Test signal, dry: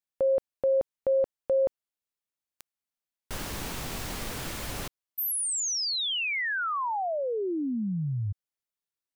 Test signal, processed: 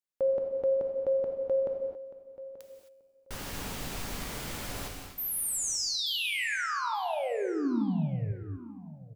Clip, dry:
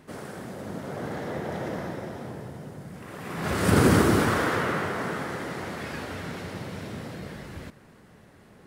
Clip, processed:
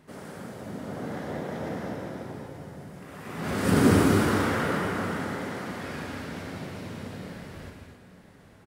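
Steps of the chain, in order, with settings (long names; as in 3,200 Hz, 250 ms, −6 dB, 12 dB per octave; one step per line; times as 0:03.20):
dynamic equaliser 250 Hz, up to +4 dB, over −40 dBFS, Q 1.6
tuned comb filter 92 Hz, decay 1.8 s, harmonics all, mix 50%
repeating echo 883 ms, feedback 17%, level −16 dB
reverb whose tail is shaped and stops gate 290 ms flat, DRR 1.5 dB
level +1 dB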